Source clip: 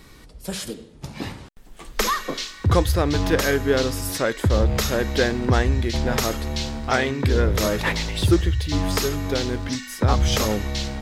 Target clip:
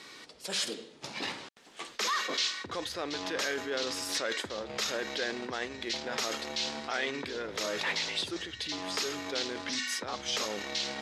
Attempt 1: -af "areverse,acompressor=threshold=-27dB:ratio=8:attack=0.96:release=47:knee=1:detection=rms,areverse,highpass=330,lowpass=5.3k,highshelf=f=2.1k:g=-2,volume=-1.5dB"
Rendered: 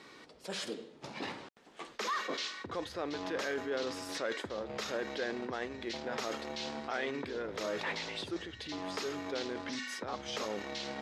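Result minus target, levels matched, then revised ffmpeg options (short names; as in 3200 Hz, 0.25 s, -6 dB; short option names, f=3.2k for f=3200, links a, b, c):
4000 Hz band -4.0 dB
-af "areverse,acompressor=threshold=-27dB:ratio=8:attack=0.96:release=47:knee=1:detection=rms,areverse,highpass=330,lowpass=5.3k,highshelf=f=2.1k:g=9.5,volume=-1.5dB"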